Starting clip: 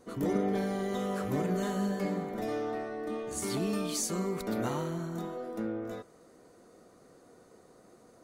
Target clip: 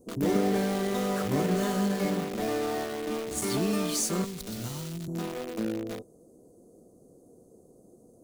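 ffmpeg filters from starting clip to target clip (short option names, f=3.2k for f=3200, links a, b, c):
-filter_complex "[0:a]acrossover=split=620|7000[a][b][c];[b]acrusher=bits=6:mix=0:aa=0.000001[d];[a][d][c]amix=inputs=3:normalize=0,asettb=1/sr,asplit=3[e][f][g];[e]atrim=end=4.244[h];[f]atrim=start=4.24:end=5.08,asetpts=PTS-STARTPTS,afade=t=in:d=0.004:c=qsin,afade=t=out:st=0.836:d=0.004:c=qsin,acrossover=split=170|3000[i][j][k];[j]acompressor=threshold=-47dB:ratio=6[l];[i][l][k]amix=inputs=3:normalize=0[m];[g]atrim=start=5.076[n];[h][m]acrossfade=d=0.004:c1=hsin:c2=qsin[o];[o][n]acrossfade=d=0.004:c1=qsin:c2=hsin,volume=4dB"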